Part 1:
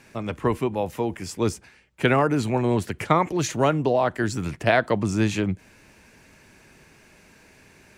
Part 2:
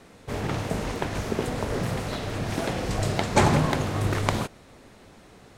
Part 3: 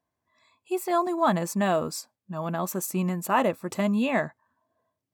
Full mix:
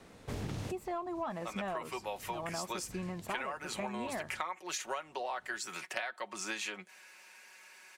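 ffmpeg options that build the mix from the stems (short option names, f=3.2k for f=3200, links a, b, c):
-filter_complex "[0:a]highpass=930,aecho=1:1:5.4:0.58,adelay=1300,volume=-1.5dB[a];[1:a]acrossover=split=340|3000[b][c][d];[c]acompressor=threshold=-39dB:ratio=6[e];[b][e][d]amix=inputs=3:normalize=0,volume=-5dB[f];[2:a]asplit=2[g][h];[h]highpass=f=720:p=1,volume=11dB,asoftclip=type=tanh:threshold=-10.5dB[i];[g][i]amix=inputs=2:normalize=0,lowpass=f=1.3k:p=1,volume=-6dB,volume=-8.5dB,asplit=2[j][k];[k]apad=whole_len=245675[l];[f][l]sidechaincompress=threshold=-56dB:ratio=4:attack=16:release=844[m];[a][m][j]amix=inputs=3:normalize=0,acompressor=threshold=-34dB:ratio=16"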